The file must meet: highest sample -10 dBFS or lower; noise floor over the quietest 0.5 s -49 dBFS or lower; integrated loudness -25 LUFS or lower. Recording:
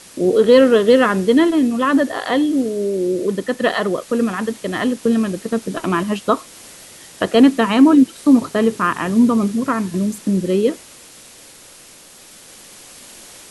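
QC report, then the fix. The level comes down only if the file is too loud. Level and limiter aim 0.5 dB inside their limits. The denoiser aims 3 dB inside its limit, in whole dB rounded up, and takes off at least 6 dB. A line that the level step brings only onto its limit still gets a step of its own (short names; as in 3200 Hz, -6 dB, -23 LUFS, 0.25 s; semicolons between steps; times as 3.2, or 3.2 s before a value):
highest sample -1.5 dBFS: fail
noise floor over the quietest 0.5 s -43 dBFS: fail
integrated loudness -16.5 LUFS: fail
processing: gain -9 dB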